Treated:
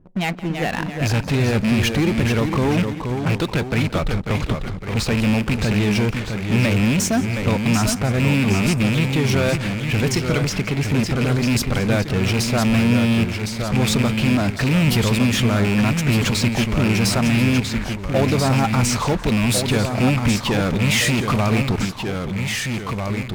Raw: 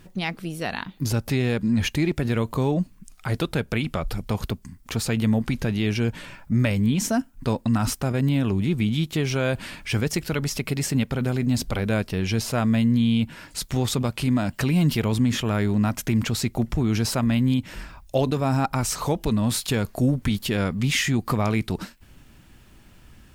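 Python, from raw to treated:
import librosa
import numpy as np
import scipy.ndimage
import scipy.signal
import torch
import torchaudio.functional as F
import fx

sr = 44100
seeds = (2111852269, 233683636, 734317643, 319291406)

p1 = fx.rattle_buzz(x, sr, strikes_db=-22.0, level_db=-19.0)
p2 = fx.env_lowpass(p1, sr, base_hz=530.0, full_db=-18.5)
p3 = fx.high_shelf(p2, sr, hz=3000.0, db=-10.5, at=(10.74, 11.16))
p4 = fx.fuzz(p3, sr, gain_db=32.0, gate_db=-40.0)
p5 = p3 + F.gain(torch.from_numpy(p4), -6.5).numpy()
p6 = fx.echo_pitch(p5, sr, ms=323, semitones=-1, count=2, db_per_echo=-6.0)
p7 = p6 + fx.echo_feedback(p6, sr, ms=171, feedback_pct=36, wet_db=-18.5, dry=0)
y = F.gain(torch.from_numpy(p7), -2.5).numpy()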